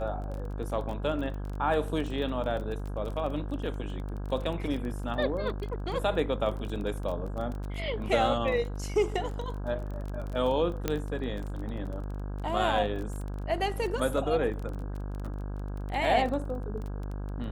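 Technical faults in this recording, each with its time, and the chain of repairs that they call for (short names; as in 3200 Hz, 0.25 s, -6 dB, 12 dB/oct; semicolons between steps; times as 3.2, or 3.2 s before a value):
buzz 50 Hz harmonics 33 -35 dBFS
crackle 21/s -35 dBFS
10.88 pop -13 dBFS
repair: de-click; de-hum 50 Hz, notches 33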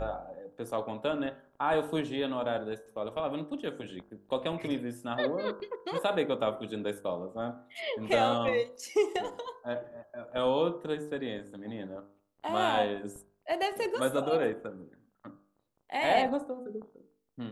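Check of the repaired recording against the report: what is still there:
none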